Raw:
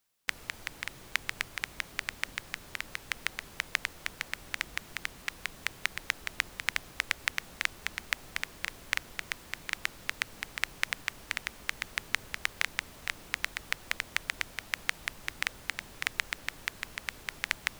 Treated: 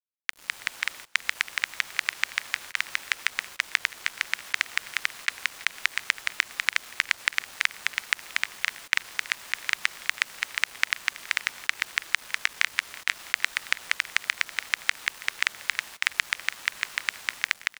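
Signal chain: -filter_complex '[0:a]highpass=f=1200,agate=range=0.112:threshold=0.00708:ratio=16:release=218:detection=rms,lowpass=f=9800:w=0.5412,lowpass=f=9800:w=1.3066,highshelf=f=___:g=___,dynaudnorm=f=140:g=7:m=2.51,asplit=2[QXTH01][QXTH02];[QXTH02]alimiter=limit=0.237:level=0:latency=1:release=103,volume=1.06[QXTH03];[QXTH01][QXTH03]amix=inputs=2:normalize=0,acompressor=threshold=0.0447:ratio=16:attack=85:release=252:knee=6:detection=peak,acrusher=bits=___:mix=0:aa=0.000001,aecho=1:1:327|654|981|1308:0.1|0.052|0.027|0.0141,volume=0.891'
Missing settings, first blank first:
2800, -4.5, 6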